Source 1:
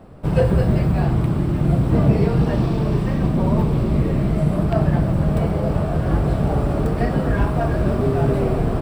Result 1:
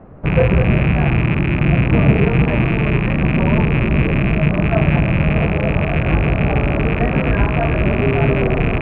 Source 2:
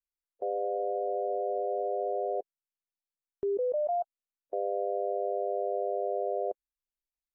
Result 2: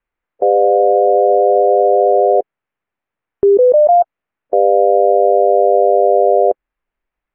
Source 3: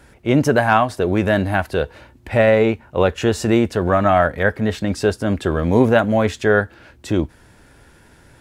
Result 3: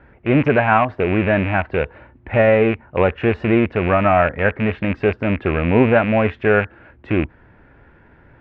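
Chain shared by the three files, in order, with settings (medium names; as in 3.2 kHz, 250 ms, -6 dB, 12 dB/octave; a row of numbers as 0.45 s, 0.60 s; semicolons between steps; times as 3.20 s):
rattle on loud lows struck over -23 dBFS, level -11 dBFS; low-pass 2.3 kHz 24 dB/octave; peak normalisation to -1.5 dBFS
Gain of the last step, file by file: +3.0 dB, +20.0 dB, 0.0 dB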